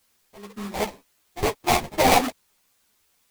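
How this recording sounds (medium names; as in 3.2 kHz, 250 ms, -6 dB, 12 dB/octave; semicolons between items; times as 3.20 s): aliases and images of a low sample rate 1.5 kHz, jitter 20%; random-step tremolo, depth 85%; a quantiser's noise floor 12-bit, dither triangular; a shimmering, thickened sound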